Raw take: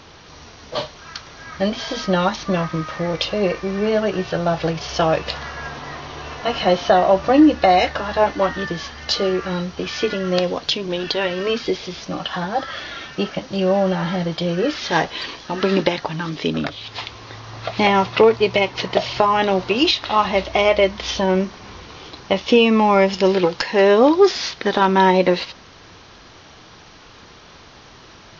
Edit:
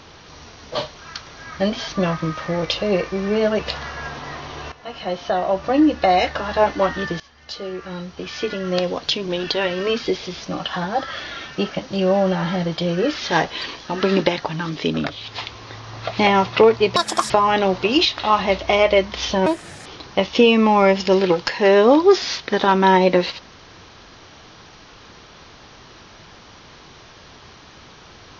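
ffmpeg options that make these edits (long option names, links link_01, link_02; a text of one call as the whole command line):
ffmpeg -i in.wav -filter_complex "[0:a]asplit=9[link_01][link_02][link_03][link_04][link_05][link_06][link_07][link_08][link_09];[link_01]atrim=end=1.882[link_10];[link_02]atrim=start=2.388:end=4.102[link_11];[link_03]atrim=start=5.188:end=6.32,asetpts=PTS-STARTPTS,afade=type=out:start_time=1.128:duration=0.004:curve=hsin:silence=0.188365[link_12];[link_04]atrim=start=6.32:end=8.8,asetpts=PTS-STARTPTS,afade=type=in:duration=1.86:silence=0.188365,afade=type=out:start_time=2.476:duration=0.004:curve=hsin:silence=0.105925[link_13];[link_05]atrim=start=8.8:end=18.564,asetpts=PTS-STARTPTS,afade=type=in:duration=2.03:silence=0.105925[link_14];[link_06]atrim=start=18.56:end=19.16,asetpts=PTS-STARTPTS,asetrate=77616,aresample=44100,atrim=end_sample=15034,asetpts=PTS-STARTPTS[link_15];[link_07]atrim=start=19.156:end=21.324[link_16];[link_08]atrim=start=21.32:end=21.99,asetpts=PTS-STARTPTS,asetrate=74529,aresample=44100,atrim=end_sample=17483,asetpts=PTS-STARTPTS[link_17];[link_09]atrim=start=21.986[link_18];[link_10][link_11]acrossfade=duration=0.004:curve1=hsin:curve2=hsin[link_19];[link_12][link_13][link_14]concat=n=3:v=0:a=1[link_20];[link_19][link_20]acrossfade=duration=0.004:curve1=hsin:curve2=hsin[link_21];[link_21][link_15]acrossfade=duration=0.004:curve1=hsin:curve2=hsin[link_22];[link_22][link_16]acrossfade=duration=0.004:curve1=hsin:curve2=hsin[link_23];[link_23][link_17]acrossfade=duration=0.004:curve1=hsin:curve2=hsin[link_24];[link_24][link_18]acrossfade=duration=0.004:curve1=hsin:curve2=hsin" out.wav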